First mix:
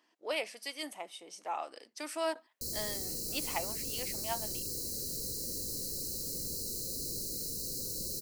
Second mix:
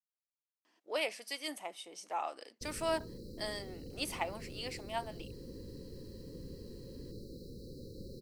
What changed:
speech: entry +0.65 s; background: add air absorption 450 m

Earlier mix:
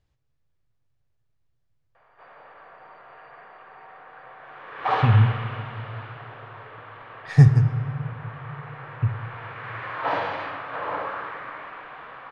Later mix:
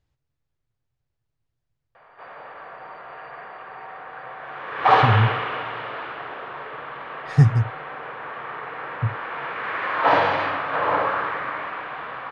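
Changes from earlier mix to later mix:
speech: send off; background +8.0 dB

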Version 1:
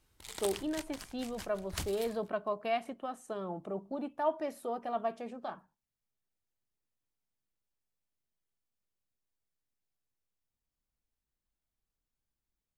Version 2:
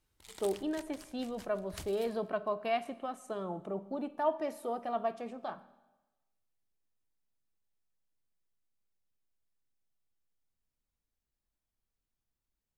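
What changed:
background -7.0 dB; reverb: on, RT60 1.1 s

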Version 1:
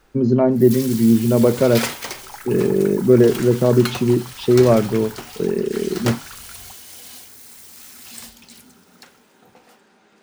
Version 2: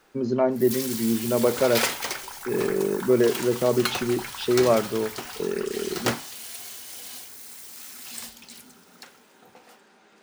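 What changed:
speech: add low shelf 450 Hz -9 dB; second sound: entry -0.70 s; master: add low shelf 190 Hz -8.5 dB

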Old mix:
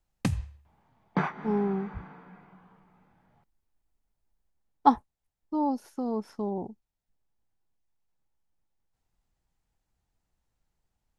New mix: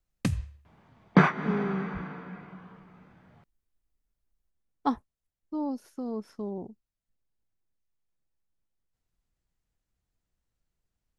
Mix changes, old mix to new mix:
speech -3.0 dB; second sound +9.5 dB; master: add bell 840 Hz -8 dB 0.42 oct

